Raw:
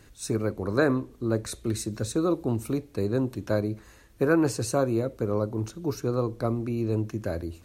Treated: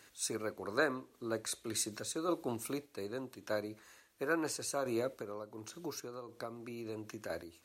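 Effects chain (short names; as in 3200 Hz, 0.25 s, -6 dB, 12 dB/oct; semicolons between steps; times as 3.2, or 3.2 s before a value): HPF 990 Hz 6 dB/oct; 5.09–7.3 compressor 5:1, threshold -39 dBFS, peak gain reduction 10 dB; random-step tremolo; gain +1 dB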